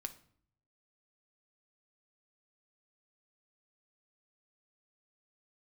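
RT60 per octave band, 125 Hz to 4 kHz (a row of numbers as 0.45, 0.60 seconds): 1.0, 0.80, 0.60, 0.55, 0.50, 0.40 seconds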